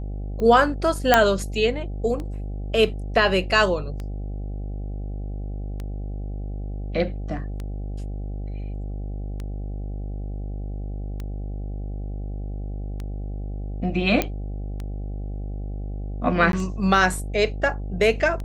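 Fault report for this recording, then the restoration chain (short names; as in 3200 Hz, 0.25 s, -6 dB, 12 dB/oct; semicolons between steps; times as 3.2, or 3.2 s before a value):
buzz 50 Hz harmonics 16 -30 dBFS
tick 33 1/3 rpm -20 dBFS
1.14 pop 0 dBFS
14.22 pop -7 dBFS
16.52–16.53 gap 12 ms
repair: de-click; de-hum 50 Hz, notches 16; interpolate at 16.52, 12 ms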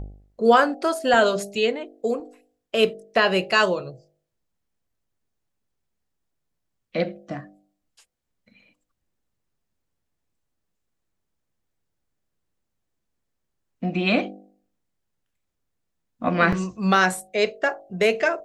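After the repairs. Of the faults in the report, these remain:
none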